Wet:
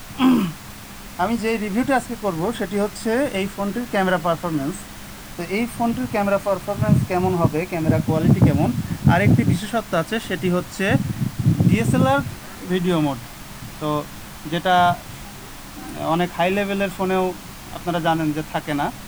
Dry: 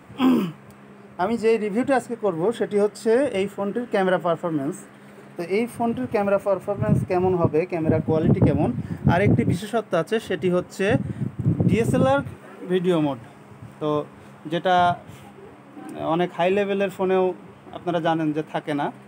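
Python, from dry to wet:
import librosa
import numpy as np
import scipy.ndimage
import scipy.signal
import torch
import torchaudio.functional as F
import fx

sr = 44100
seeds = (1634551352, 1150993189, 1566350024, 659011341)

y = fx.dmg_noise_colour(x, sr, seeds[0], colour='pink', level_db=-42.0)
y = fx.peak_eq(y, sr, hz=440.0, db=-9.5, octaves=0.73)
y = F.gain(torch.from_numpy(y), 4.5).numpy()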